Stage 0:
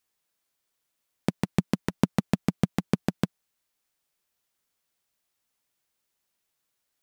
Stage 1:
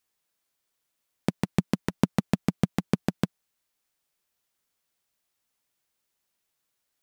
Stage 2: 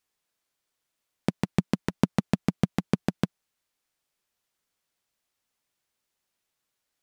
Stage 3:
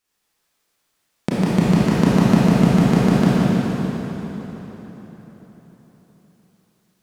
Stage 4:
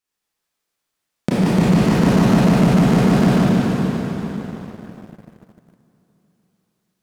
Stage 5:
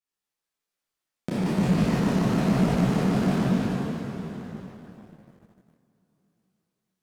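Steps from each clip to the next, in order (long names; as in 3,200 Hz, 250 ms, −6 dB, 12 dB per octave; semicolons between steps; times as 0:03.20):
no processing that can be heard
high-shelf EQ 11,000 Hz −7 dB
convolution reverb RT60 4.4 s, pre-delay 23 ms, DRR −10 dB; level +2 dB
leveller curve on the samples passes 2; level −4 dB
micro pitch shift up and down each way 38 cents; level −5 dB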